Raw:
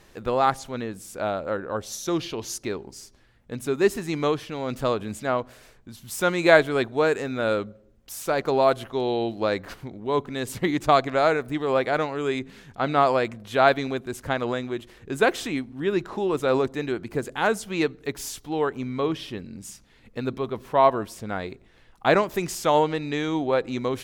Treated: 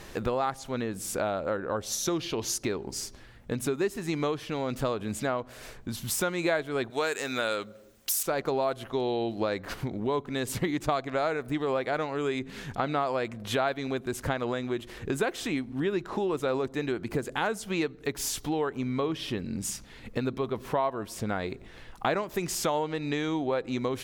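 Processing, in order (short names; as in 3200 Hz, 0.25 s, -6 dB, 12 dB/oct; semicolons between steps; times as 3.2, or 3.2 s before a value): 6.9–8.23 tilt +3.5 dB/oct; compressor 4:1, threshold -37 dBFS, peak gain reduction 22 dB; gain +8.5 dB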